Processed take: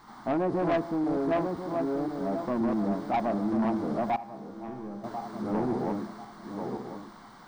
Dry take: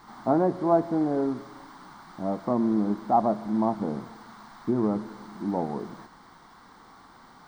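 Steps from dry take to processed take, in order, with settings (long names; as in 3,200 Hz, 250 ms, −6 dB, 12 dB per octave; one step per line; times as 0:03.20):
feedback delay that plays each chunk backwards 521 ms, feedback 50%, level −1 dB
soft clipping −19.5 dBFS, distortion −12 dB
0:04.16–0:05.04: tuned comb filter 67 Hz, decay 0.99 s, harmonics all, mix 80%
level −2 dB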